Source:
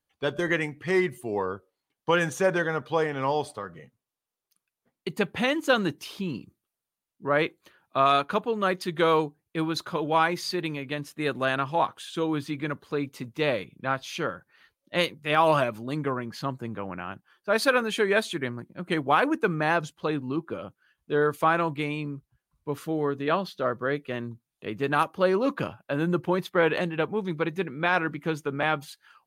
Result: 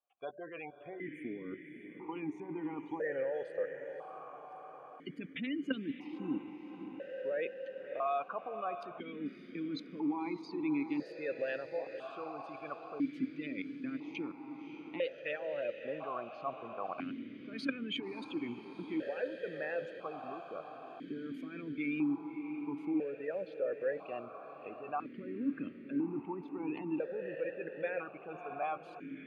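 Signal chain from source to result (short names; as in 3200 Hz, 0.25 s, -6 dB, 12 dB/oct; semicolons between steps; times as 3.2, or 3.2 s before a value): spectral gate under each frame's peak -20 dB strong; level quantiser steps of 18 dB; on a send: diffused feedback echo 0.595 s, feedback 69%, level -9.5 dB; on the sum: vowel sequencer 1 Hz; gain +9 dB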